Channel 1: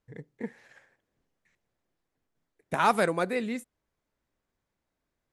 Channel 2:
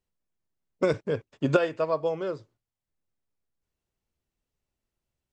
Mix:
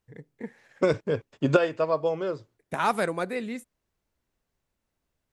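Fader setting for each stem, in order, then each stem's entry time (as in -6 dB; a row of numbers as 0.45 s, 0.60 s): -1.5 dB, +1.5 dB; 0.00 s, 0.00 s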